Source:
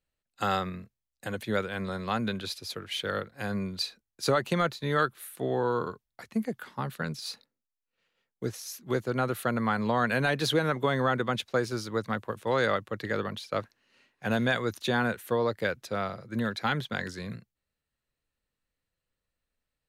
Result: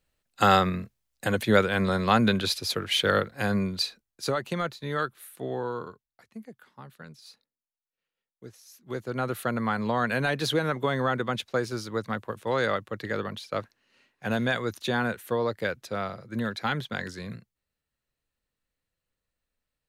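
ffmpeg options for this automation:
ffmpeg -i in.wav -af "volume=21dB,afade=type=out:start_time=3.1:duration=1.23:silence=0.266073,afade=type=out:start_time=5.53:duration=0.72:silence=0.334965,afade=type=in:start_time=8.69:duration=0.63:silence=0.237137" out.wav

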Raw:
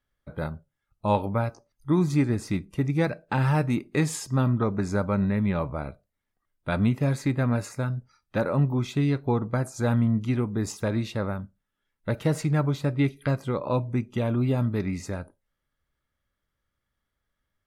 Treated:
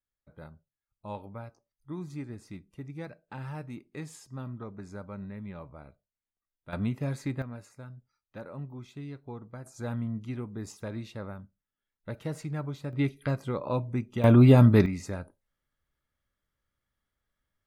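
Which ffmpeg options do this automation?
ffmpeg -i in.wav -af "asetnsamples=nb_out_samples=441:pad=0,asendcmd='6.73 volume volume -7.5dB;7.42 volume volume -17dB;9.66 volume volume -10.5dB;12.93 volume volume -4dB;14.24 volume volume 8dB;14.86 volume volume -3dB',volume=-16dB" out.wav

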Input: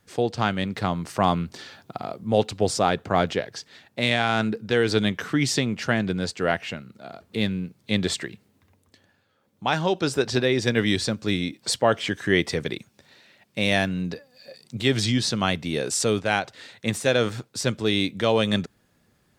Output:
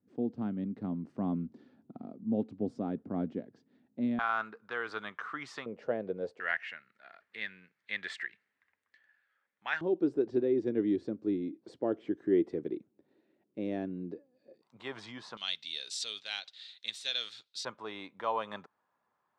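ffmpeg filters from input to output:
ffmpeg -i in.wav -af "asetnsamples=nb_out_samples=441:pad=0,asendcmd='4.19 bandpass f 1200;5.66 bandpass f 500;6.4 bandpass f 1800;9.81 bandpass f 330;14.62 bandpass f 1000;15.37 bandpass f 3800;17.65 bandpass f 1000',bandpass=frequency=250:width_type=q:width=4.1:csg=0" out.wav

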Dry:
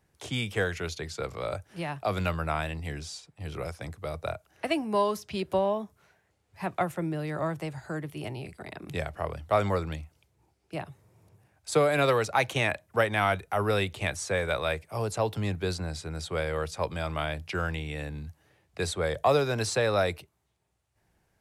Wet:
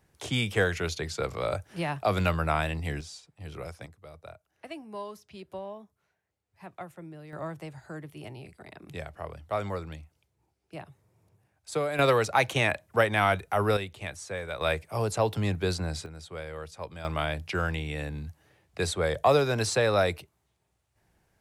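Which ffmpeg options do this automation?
ffmpeg -i in.wav -af "asetnsamples=nb_out_samples=441:pad=0,asendcmd='3.01 volume volume -4dB;3.86 volume volume -13dB;7.33 volume volume -6dB;11.99 volume volume 1.5dB;13.77 volume volume -7dB;14.61 volume volume 2dB;16.06 volume volume -8.5dB;17.05 volume volume 1.5dB',volume=3dB" out.wav

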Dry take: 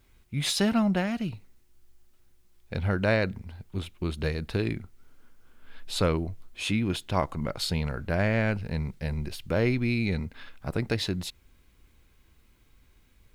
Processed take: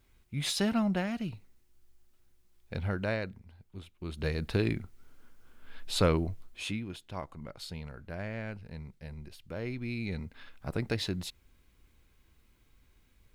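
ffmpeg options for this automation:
ffmpeg -i in.wav -af "volume=16.5dB,afade=type=out:start_time=2.75:duration=0.64:silence=0.398107,afade=type=in:start_time=3.99:duration=0.44:silence=0.251189,afade=type=out:start_time=6.31:duration=0.55:silence=0.237137,afade=type=in:start_time=9.6:duration=1.12:silence=0.354813" out.wav

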